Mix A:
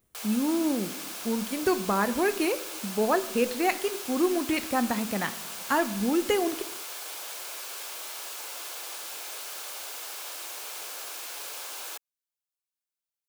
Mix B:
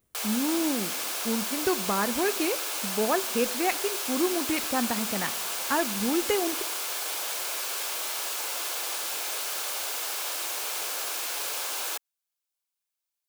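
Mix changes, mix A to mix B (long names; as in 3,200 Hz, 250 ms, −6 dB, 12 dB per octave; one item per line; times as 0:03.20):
speech: send −6.5 dB
background +6.5 dB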